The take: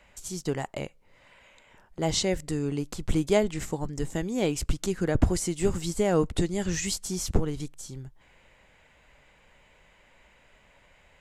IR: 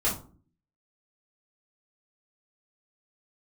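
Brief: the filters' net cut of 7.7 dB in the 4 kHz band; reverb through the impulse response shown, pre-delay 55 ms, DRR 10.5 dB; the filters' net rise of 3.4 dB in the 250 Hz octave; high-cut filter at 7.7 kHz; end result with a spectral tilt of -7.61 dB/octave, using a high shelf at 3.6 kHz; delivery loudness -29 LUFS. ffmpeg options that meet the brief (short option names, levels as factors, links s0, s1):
-filter_complex "[0:a]lowpass=7700,equalizer=f=250:t=o:g=5,highshelf=f=3600:g=-8,equalizer=f=4000:t=o:g=-4,asplit=2[s0][s1];[1:a]atrim=start_sample=2205,adelay=55[s2];[s1][s2]afir=irnorm=-1:irlink=0,volume=0.0944[s3];[s0][s3]amix=inputs=2:normalize=0,volume=0.75"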